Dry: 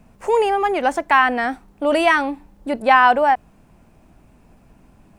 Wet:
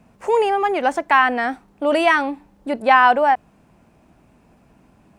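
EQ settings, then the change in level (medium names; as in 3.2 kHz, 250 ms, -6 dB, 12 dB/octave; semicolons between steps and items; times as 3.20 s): high-pass 110 Hz 6 dB/octave; treble shelf 8.9 kHz -6 dB; 0.0 dB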